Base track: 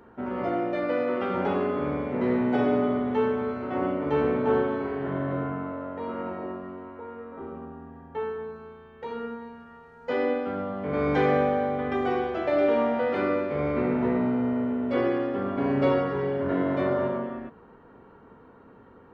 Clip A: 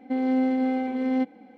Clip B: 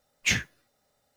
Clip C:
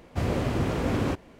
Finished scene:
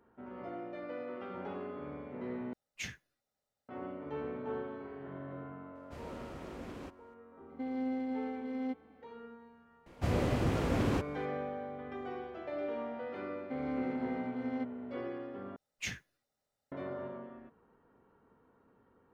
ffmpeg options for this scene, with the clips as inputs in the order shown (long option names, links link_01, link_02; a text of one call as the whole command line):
ffmpeg -i bed.wav -i cue0.wav -i cue1.wav -i cue2.wav -filter_complex "[2:a]asplit=2[link_01][link_02];[3:a]asplit=2[link_03][link_04];[1:a]asplit=2[link_05][link_06];[0:a]volume=-15.5dB[link_07];[link_03]equalizer=frequency=110:width_type=o:width=0.9:gain=-9[link_08];[link_06]equalizer=frequency=1400:width=0.94:gain=7[link_09];[link_07]asplit=3[link_10][link_11][link_12];[link_10]atrim=end=2.534[link_13];[link_01]atrim=end=1.16,asetpts=PTS-STARTPTS,volume=-17dB[link_14];[link_11]atrim=start=3.686:end=15.564[link_15];[link_02]atrim=end=1.16,asetpts=PTS-STARTPTS,volume=-14.5dB[link_16];[link_12]atrim=start=16.716[link_17];[link_08]atrim=end=1.39,asetpts=PTS-STARTPTS,volume=-18dB,afade=type=in:duration=0.004:curve=hsin,afade=type=out:start_time=1.386:duration=0.004:curve=hsin,adelay=5750[link_18];[link_05]atrim=end=1.57,asetpts=PTS-STARTPTS,volume=-12.5dB,afade=type=in:duration=0.004:curve=hsin,afade=type=out:start_time=1.566:duration=0.004:curve=hsin,adelay=7490[link_19];[link_04]atrim=end=1.39,asetpts=PTS-STARTPTS,volume=-4.5dB,afade=type=in:duration=0.004:curve=hsin,afade=type=out:start_time=1.386:duration=0.004:curve=hsin,adelay=434826S[link_20];[link_09]atrim=end=1.57,asetpts=PTS-STARTPTS,volume=-14.5dB,afade=type=in:duration=0.004:curve=hsin,afade=type=out:start_time=1.566:duration=0.004:curve=hsin,adelay=13400[link_21];[link_13][link_14]acrossfade=duration=0.004:curve1=hsin:curve2=hsin[link_22];[link_22][link_15]acrossfade=duration=0.004:curve1=hsin:curve2=hsin[link_23];[link_23][link_16]acrossfade=duration=0.004:curve1=hsin:curve2=hsin[link_24];[link_24][link_17]acrossfade=duration=0.004:curve1=hsin:curve2=hsin[link_25];[link_25][link_18][link_19][link_20][link_21]amix=inputs=5:normalize=0" out.wav